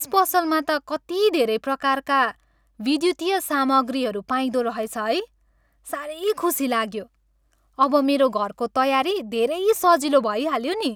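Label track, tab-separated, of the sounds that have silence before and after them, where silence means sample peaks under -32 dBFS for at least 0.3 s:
2.800000	5.240000	sound
5.870000	7.030000	sound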